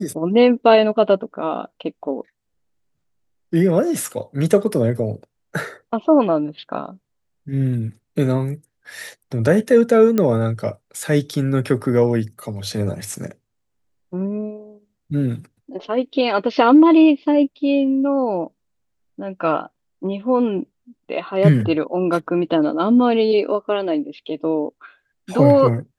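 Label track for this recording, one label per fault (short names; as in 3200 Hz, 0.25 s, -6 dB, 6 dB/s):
10.180000	10.180000	pop -7 dBFS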